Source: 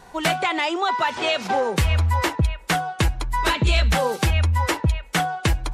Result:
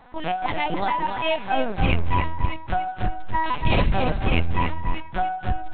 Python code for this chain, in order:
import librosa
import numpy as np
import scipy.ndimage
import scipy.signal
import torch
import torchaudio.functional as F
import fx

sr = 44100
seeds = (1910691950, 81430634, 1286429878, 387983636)

y = fx.hpss(x, sr, part='percussive', gain_db=-16)
y = fx.lpc_vocoder(y, sr, seeds[0], excitation='pitch_kept', order=8)
y = fx.echo_feedback(y, sr, ms=285, feedback_pct=16, wet_db=-7.0)